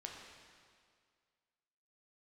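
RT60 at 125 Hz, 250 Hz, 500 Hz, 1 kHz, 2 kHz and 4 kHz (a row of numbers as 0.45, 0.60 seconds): 1.9, 2.0, 2.0, 2.0, 1.9, 1.8 seconds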